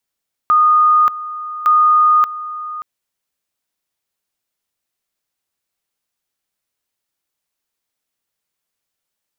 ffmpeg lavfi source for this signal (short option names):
-f lavfi -i "aevalsrc='pow(10,(-8-15.5*gte(mod(t,1.16),0.58))/20)*sin(2*PI*1230*t)':d=2.32:s=44100"